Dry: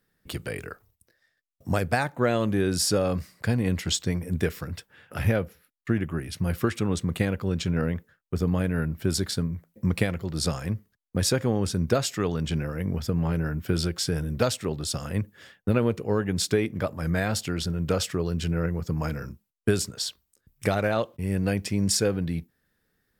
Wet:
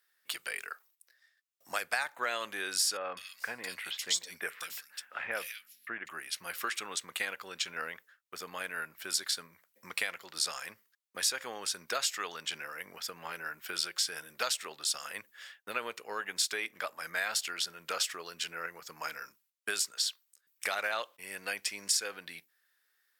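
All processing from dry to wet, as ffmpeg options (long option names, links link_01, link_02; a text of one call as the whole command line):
ffmpeg -i in.wav -filter_complex "[0:a]asettb=1/sr,asplit=3[link_01][link_02][link_03];[link_01]atrim=end=2.974[link_04];[link_02]atrim=start=2.97:end=6.09,asetpts=PTS-STARTPTS,afade=type=in:duration=0.004:curve=qsin,afade=type=out:start_time=3.116:duration=0.004:curve=qsin,aeval=exprs='val(0)+0.00316*(sin(2*PI*50*n/s)+sin(2*PI*2*50*n/s)/2+sin(2*PI*3*50*n/s)/3+sin(2*PI*4*50*n/s)/4+sin(2*PI*5*50*n/s)/5)':channel_layout=same,bandreject=frequency=50:width_type=h:width=6,bandreject=frequency=100:width_type=h:width=6,bandreject=frequency=150:width_type=h:width=6,acrossover=split=2600[link_05][link_06];[link_06]adelay=200[link_07];[link_05][link_07]amix=inputs=2:normalize=0,atrim=end_sample=137592[link_08];[link_03]atrim=start=6.086[link_09];[link_04][link_08]acrossfade=duration=0.004:curve1=hsin:curve2=qsin[link_10];[link_10][link_09]acrossfade=duration=0.004:curve1=qsin:curve2=hsin,highpass=1300,acompressor=threshold=-30dB:ratio=2.5,volume=2dB" out.wav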